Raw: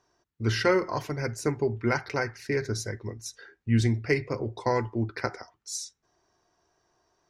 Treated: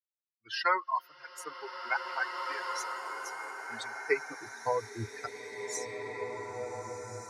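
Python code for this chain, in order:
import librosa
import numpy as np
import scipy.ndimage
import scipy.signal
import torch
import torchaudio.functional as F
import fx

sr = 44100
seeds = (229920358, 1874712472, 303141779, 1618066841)

y = fx.bin_expand(x, sr, power=3.0)
y = fx.filter_sweep_highpass(y, sr, from_hz=1000.0, to_hz=77.0, start_s=3.95, end_s=4.72, q=3.1)
y = fx.rev_bloom(y, sr, seeds[0], attack_ms=2050, drr_db=3.0)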